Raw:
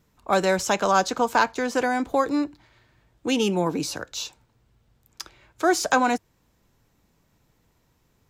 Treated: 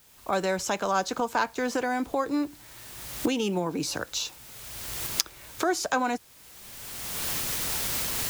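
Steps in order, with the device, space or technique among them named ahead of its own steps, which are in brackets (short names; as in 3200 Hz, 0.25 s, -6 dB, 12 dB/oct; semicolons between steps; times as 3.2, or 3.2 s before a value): cheap recorder with automatic gain (white noise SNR 27 dB; recorder AGC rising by 25 dB/s); gain -6 dB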